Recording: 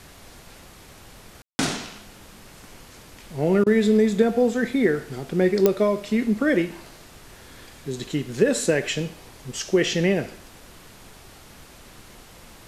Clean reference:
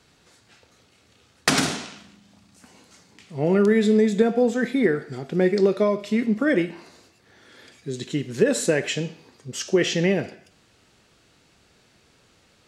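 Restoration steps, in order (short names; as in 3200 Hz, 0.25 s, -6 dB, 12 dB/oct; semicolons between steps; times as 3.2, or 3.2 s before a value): de-click; room tone fill 1.42–1.59; interpolate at 3.64, 23 ms; noise print and reduce 13 dB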